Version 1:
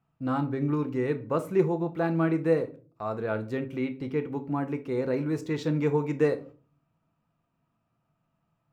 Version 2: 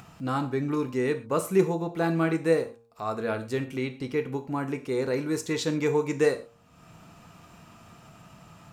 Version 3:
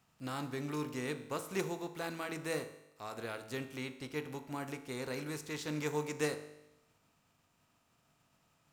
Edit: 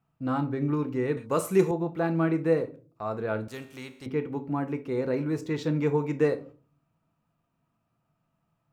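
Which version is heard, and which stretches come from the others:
1
1.17–1.71 s: from 2
3.48–4.06 s: from 3

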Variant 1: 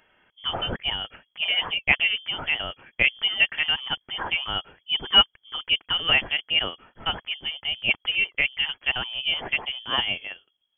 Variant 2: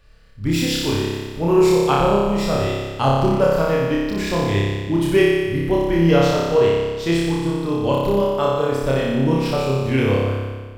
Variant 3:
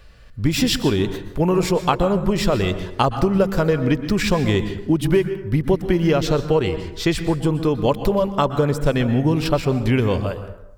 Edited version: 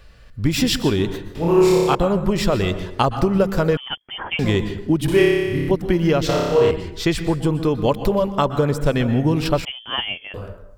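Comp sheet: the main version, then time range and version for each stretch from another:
3
1.35–1.95 s: from 2
3.77–4.39 s: from 1
5.08–5.71 s: from 2
6.29–6.71 s: from 2
9.65–10.34 s: from 1

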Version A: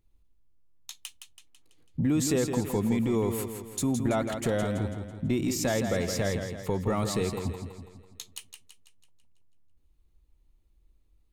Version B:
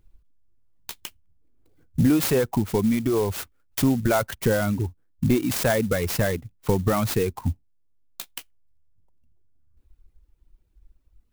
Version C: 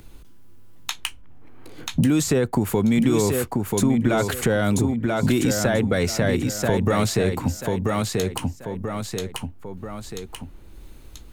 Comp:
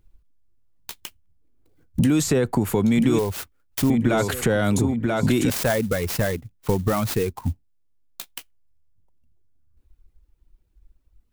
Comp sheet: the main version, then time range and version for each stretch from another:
B
1.99–3.19 s: from C
3.90–5.50 s: from C
not used: A

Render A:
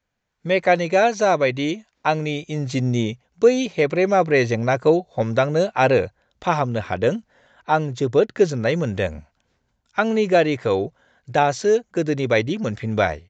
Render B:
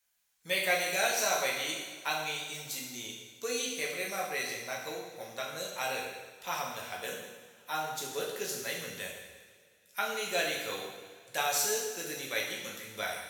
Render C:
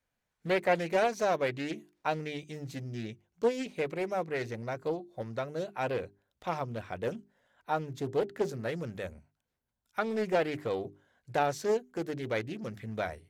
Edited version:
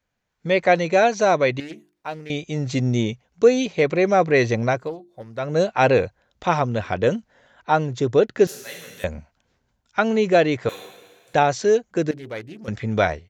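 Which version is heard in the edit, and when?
A
1.60–2.30 s: from C
4.79–5.47 s: from C, crossfade 0.24 s
8.47–9.04 s: from B
10.69–11.34 s: from B
12.11–12.68 s: from C

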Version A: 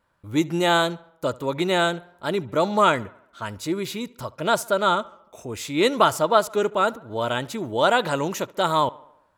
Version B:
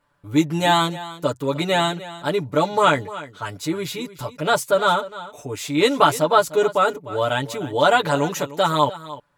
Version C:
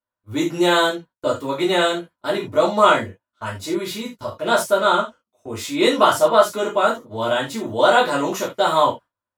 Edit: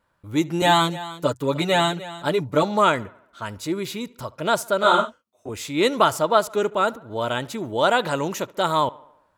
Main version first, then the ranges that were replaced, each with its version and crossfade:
A
0.62–2.63 s: from B
4.83–5.49 s: from C

